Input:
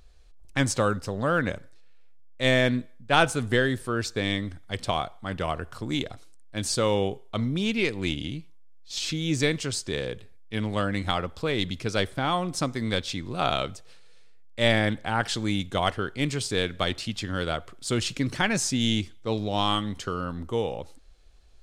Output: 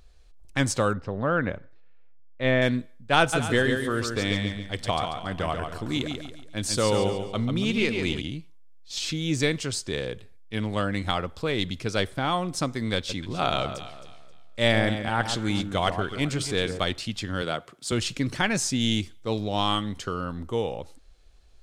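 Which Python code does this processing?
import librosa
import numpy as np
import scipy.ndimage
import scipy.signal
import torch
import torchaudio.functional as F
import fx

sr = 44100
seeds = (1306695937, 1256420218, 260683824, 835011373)

y = fx.lowpass(x, sr, hz=2300.0, slope=12, at=(0.93, 2.62))
y = fx.echo_feedback(y, sr, ms=140, feedback_pct=38, wet_db=-5.5, at=(3.32, 8.2), fade=0.02)
y = fx.echo_alternate(y, sr, ms=133, hz=1300.0, feedback_pct=54, wet_db=-7.5, at=(12.96, 16.79))
y = fx.highpass(y, sr, hz=120.0, slope=24, at=(17.42, 17.92))
y = fx.high_shelf(y, sr, hz=8400.0, db=6.0, at=(18.91, 19.41))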